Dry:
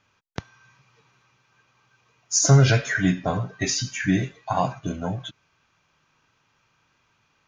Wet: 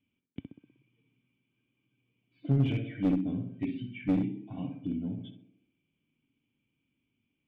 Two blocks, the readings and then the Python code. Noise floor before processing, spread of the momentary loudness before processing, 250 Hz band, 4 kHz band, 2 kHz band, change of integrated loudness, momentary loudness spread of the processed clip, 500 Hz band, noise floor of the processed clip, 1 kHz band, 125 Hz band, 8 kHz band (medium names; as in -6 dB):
-68 dBFS, 23 LU, -4.0 dB, -21.0 dB, -21.0 dB, -9.5 dB, 20 LU, -14.0 dB, -82 dBFS, -21.5 dB, -11.0 dB, under -40 dB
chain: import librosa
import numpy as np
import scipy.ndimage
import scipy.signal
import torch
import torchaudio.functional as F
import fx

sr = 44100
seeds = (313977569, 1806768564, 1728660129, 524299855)

y = fx.formant_cascade(x, sr, vowel='i')
y = fx.echo_tape(y, sr, ms=62, feedback_pct=65, wet_db=-4, lp_hz=1100.0, drive_db=11.0, wow_cents=35)
y = fx.clip_asym(y, sr, top_db=-24.5, bottom_db=-16.5)